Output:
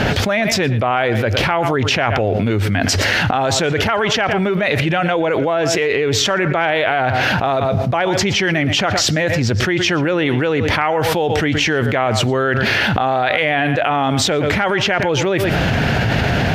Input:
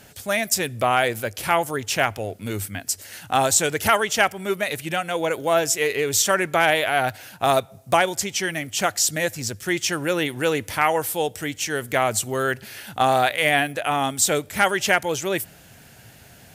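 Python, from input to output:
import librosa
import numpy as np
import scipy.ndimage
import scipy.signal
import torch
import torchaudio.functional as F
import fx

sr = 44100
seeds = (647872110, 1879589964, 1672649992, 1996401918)

p1 = fx.air_absorb(x, sr, metres=260.0)
p2 = p1 + fx.echo_single(p1, sr, ms=117, db=-20.0, dry=0)
p3 = fx.env_flatten(p2, sr, amount_pct=100)
y = F.gain(torch.from_numpy(p3), -1.0).numpy()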